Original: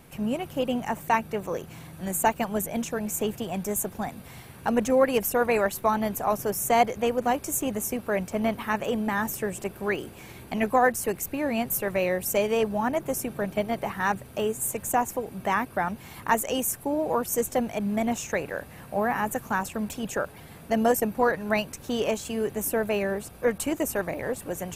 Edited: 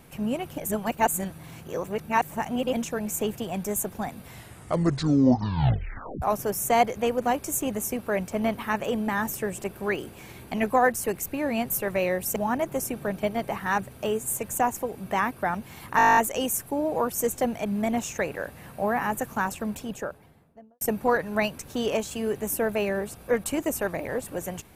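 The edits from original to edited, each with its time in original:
0.58–2.73 s: reverse
4.27 s: tape stop 1.95 s
12.36–12.70 s: delete
16.31 s: stutter 0.02 s, 11 plays
19.66–20.95 s: studio fade out

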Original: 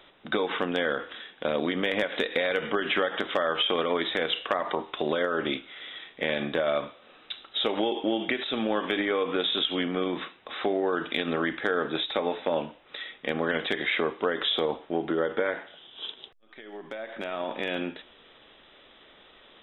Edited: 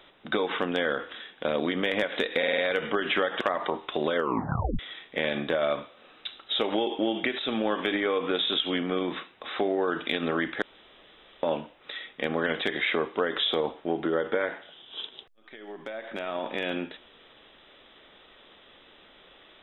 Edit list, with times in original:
2.38 s: stutter 0.05 s, 5 plays
3.21–4.46 s: delete
5.21 s: tape stop 0.63 s
11.67–12.48 s: room tone

